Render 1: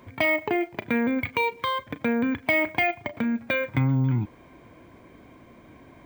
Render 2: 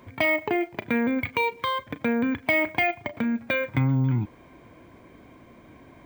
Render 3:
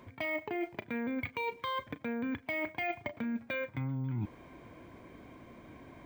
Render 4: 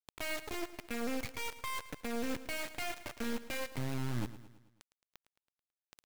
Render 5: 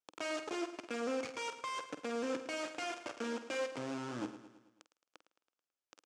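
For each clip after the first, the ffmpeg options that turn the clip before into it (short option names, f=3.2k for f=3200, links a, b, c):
-af anull
-af "highshelf=f=8.9k:g=-3.5,areverse,acompressor=threshold=-31dB:ratio=6,areverse,volume=-2dB"
-filter_complex "[0:a]acrossover=split=140[a][b];[b]alimiter=level_in=5.5dB:limit=-24dB:level=0:latency=1:release=55,volume=-5.5dB[c];[a][c]amix=inputs=2:normalize=0,acrusher=bits=4:dc=4:mix=0:aa=0.000001,aecho=1:1:109|218|327|436|545:0.178|0.0942|0.05|0.0265|0.014,volume=2dB"
-filter_complex "[0:a]asplit=2[a][b];[b]asoftclip=type=hard:threshold=-36dB,volume=-4dB[c];[a][c]amix=inputs=2:normalize=0,highpass=280,equalizer=f=310:t=q:w=4:g=6,equalizer=f=510:t=q:w=4:g=5,equalizer=f=1.3k:t=q:w=4:g=4,equalizer=f=2k:t=q:w=4:g=-6,equalizer=f=4k:t=q:w=4:g=-6,lowpass=f=7.4k:w=0.5412,lowpass=f=7.4k:w=1.3066,asplit=2[d][e];[e]adelay=48,volume=-12dB[f];[d][f]amix=inputs=2:normalize=0,volume=-2dB"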